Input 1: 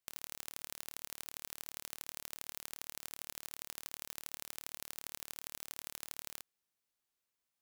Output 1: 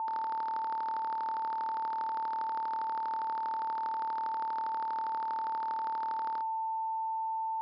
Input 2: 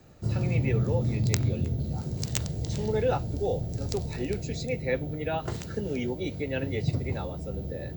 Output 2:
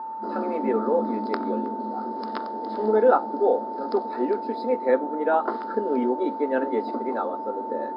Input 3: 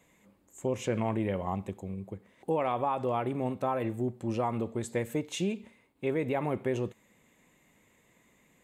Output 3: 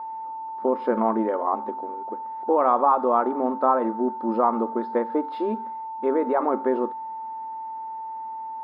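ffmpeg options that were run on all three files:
ffmpeg -i in.wav -filter_complex "[0:a]aeval=exprs='val(0)+0.00891*sin(2*PI*890*n/s)':channel_layout=same,afftfilt=real='re*between(b*sr/4096,210,5200)':imag='im*between(b*sr/4096,210,5200)':win_size=4096:overlap=0.75,asplit=2[link_01][link_02];[link_02]aeval=exprs='sgn(val(0))*max(abs(val(0))-0.00422,0)':channel_layout=same,volume=-9.5dB[link_03];[link_01][link_03]amix=inputs=2:normalize=0,highshelf=frequency=1800:width_type=q:width=3:gain=-12,bandreject=frequency=272.6:width_type=h:width=4,bandreject=frequency=545.2:width_type=h:width=4,bandreject=frequency=817.8:width_type=h:width=4,volume=5dB" out.wav

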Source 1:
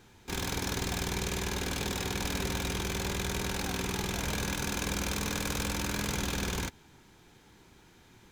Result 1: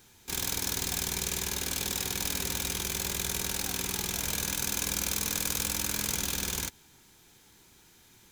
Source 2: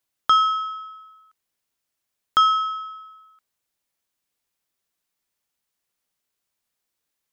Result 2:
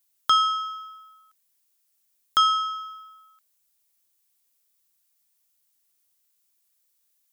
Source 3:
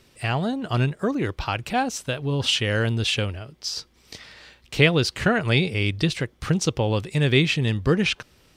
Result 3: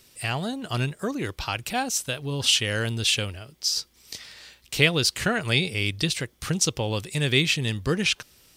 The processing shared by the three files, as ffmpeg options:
ffmpeg -i in.wav -af "crystalizer=i=3.5:c=0,volume=-5dB" out.wav

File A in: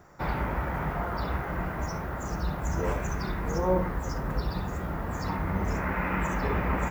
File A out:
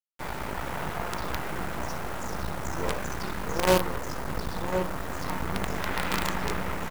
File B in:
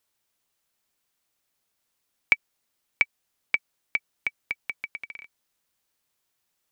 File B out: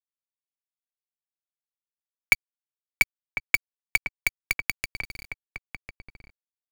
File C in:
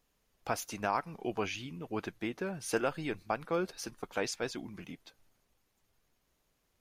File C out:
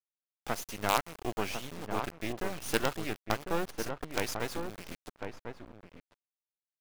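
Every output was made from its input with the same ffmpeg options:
ffmpeg -i in.wav -filter_complex "[0:a]lowshelf=frequency=140:gain=-8,dynaudnorm=framelen=110:gausssize=9:maxgain=4dB,aeval=exprs='val(0)+0.000891*(sin(2*PI*50*n/s)+sin(2*PI*2*50*n/s)/2+sin(2*PI*3*50*n/s)/3+sin(2*PI*4*50*n/s)/4+sin(2*PI*5*50*n/s)/5)':channel_layout=same,acrusher=bits=4:dc=4:mix=0:aa=0.000001,asplit=2[link_01][link_02];[link_02]adelay=1050,volume=-6dB,highshelf=frequency=4000:gain=-23.6[link_03];[link_01][link_03]amix=inputs=2:normalize=0" out.wav

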